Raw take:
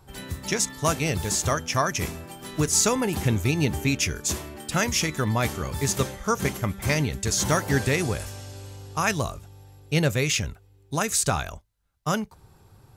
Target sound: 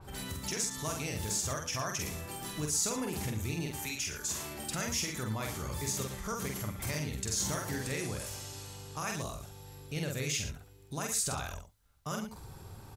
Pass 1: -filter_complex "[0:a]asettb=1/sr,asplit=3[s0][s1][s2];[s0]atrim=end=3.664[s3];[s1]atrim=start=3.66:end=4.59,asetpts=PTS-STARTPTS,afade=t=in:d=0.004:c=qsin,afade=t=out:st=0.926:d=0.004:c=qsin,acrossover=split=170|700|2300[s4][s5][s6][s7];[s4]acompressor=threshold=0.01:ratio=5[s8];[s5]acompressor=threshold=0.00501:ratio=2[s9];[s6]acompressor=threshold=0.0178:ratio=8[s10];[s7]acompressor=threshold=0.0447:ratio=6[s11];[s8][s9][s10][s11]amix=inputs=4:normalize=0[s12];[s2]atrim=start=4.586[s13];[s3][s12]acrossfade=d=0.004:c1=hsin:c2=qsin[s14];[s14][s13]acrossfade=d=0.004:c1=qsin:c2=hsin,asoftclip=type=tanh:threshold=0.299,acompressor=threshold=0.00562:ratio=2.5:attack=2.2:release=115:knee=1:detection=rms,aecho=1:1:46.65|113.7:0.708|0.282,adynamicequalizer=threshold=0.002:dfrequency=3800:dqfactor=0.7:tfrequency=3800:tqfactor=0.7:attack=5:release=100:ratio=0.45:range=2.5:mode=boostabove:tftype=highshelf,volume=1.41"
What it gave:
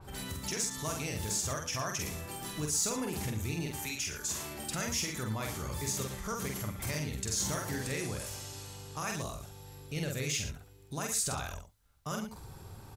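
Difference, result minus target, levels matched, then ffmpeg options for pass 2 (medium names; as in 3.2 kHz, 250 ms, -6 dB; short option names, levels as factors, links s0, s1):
saturation: distortion +16 dB
-filter_complex "[0:a]asettb=1/sr,asplit=3[s0][s1][s2];[s0]atrim=end=3.664[s3];[s1]atrim=start=3.66:end=4.59,asetpts=PTS-STARTPTS,afade=t=in:d=0.004:c=qsin,afade=t=out:st=0.926:d=0.004:c=qsin,acrossover=split=170|700|2300[s4][s5][s6][s7];[s4]acompressor=threshold=0.01:ratio=5[s8];[s5]acompressor=threshold=0.00501:ratio=2[s9];[s6]acompressor=threshold=0.0178:ratio=8[s10];[s7]acompressor=threshold=0.0447:ratio=6[s11];[s8][s9][s10][s11]amix=inputs=4:normalize=0[s12];[s2]atrim=start=4.586[s13];[s3][s12]acrossfade=d=0.004:c1=hsin:c2=qsin[s14];[s14][s13]acrossfade=d=0.004:c1=qsin:c2=hsin,asoftclip=type=tanh:threshold=0.841,acompressor=threshold=0.00562:ratio=2.5:attack=2.2:release=115:knee=1:detection=rms,aecho=1:1:46.65|113.7:0.708|0.282,adynamicequalizer=threshold=0.002:dfrequency=3800:dqfactor=0.7:tfrequency=3800:tqfactor=0.7:attack=5:release=100:ratio=0.45:range=2.5:mode=boostabove:tftype=highshelf,volume=1.41"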